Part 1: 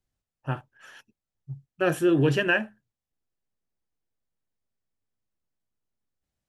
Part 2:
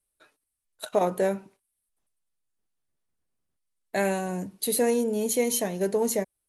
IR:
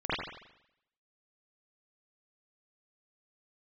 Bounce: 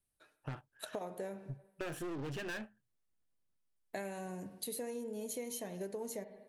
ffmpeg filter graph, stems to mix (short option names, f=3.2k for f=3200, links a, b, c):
-filter_complex "[0:a]asoftclip=type=tanh:threshold=-26dB,aeval=exprs='0.0501*(cos(1*acos(clip(val(0)/0.0501,-1,1)))-cos(1*PI/2))+0.01*(cos(2*acos(clip(val(0)/0.0501,-1,1)))-cos(2*PI/2))+0.00355*(cos(7*acos(clip(val(0)/0.0501,-1,1)))-cos(7*PI/2))':c=same,volume=-1.5dB[a];[1:a]volume=-7.5dB,asplit=2[b][c];[c]volume=-23dB[d];[2:a]atrim=start_sample=2205[e];[d][e]afir=irnorm=-1:irlink=0[f];[a][b][f]amix=inputs=3:normalize=0,acompressor=threshold=-39dB:ratio=6"